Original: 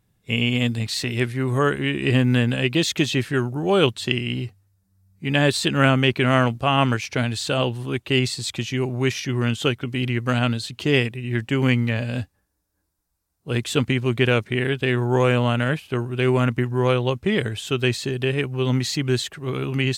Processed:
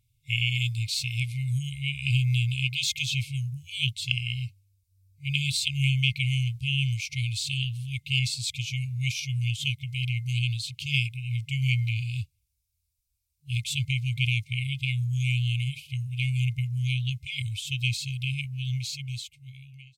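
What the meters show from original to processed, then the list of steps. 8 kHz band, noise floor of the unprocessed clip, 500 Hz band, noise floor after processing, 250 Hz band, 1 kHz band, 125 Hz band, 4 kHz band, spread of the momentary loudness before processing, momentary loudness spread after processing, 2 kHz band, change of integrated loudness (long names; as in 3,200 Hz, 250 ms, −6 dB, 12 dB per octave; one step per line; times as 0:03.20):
−3.0 dB, −73 dBFS, below −40 dB, −77 dBFS, below −15 dB, below −40 dB, −3.0 dB, −3.0 dB, 7 LU, 8 LU, −6.0 dB, −6.0 dB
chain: fade-out on the ending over 1.88 s
brick-wall band-stop 140–2,100 Hz
level −2.5 dB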